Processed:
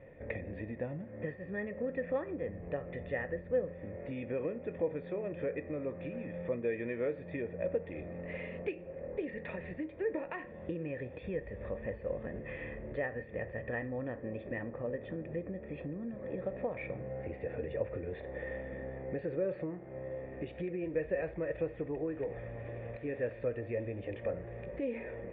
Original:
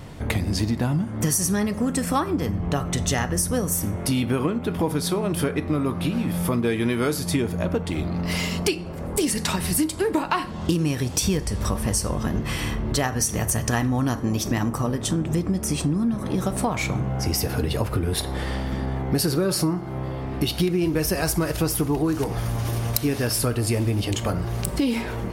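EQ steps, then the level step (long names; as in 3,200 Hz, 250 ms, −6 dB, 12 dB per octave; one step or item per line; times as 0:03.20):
formant resonators in series e
0.0 dB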